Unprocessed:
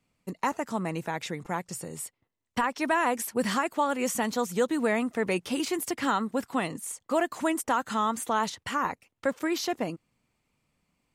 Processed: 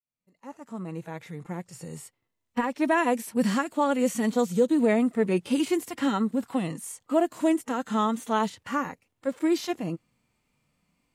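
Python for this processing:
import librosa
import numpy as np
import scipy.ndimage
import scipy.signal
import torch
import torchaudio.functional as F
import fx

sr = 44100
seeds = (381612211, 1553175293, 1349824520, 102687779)

y = fx.fade_in_head(x, sr, length_s=2.42)
y = fx.hpss(y, sr, part='percussive', gain_db=-18)
y = fx.dynamic_eq(y, sr, hz=1100.0, q=1.0, threshold_db=-41.0, ratio=4.0, max_db=-6)
y = y * librosa.db_to_amplitude(6.5)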